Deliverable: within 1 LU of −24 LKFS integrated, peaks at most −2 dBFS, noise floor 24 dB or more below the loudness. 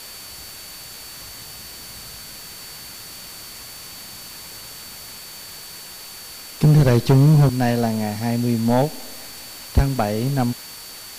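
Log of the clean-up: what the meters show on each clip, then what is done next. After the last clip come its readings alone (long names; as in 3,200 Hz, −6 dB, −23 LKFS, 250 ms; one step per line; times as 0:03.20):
interfering tone 4,500 Hz; level of the tone −41 dBFS; background noise floor −38 dBFS; target noise floor −43 dBFS; integrated loudness −18.5 LKFS; sample peak −7.0 dBFS; target loudness −24.0 LKFS
→ notch filter 4,500 Hz, Q 30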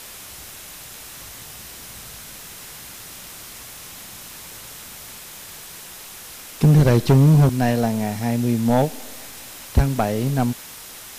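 interfering tone none found; background noise floor −39 dBFS; target noise floor −43 dBFS
→ broadband denoise 6 dB, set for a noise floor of −39 dBFS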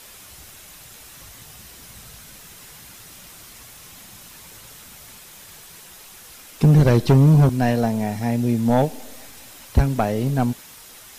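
background noise floor −44 dBFS; integrated loudness −18.5 LKFS; sample peak −7.5 dBFS; target loudness −24.0 LKFS
→ level −5.5 dB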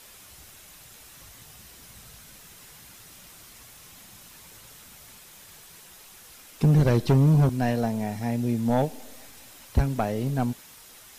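integrated loudness −24.0 LKFS; sample peak −13.0 dBFS; background noise floor −49 dBFS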